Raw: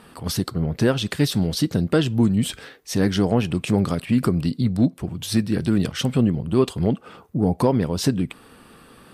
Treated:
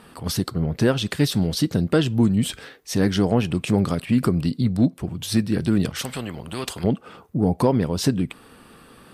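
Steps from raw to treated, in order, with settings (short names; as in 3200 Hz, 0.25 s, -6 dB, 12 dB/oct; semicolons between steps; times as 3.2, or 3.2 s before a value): 5.96–6.84 spectral compressor 2:1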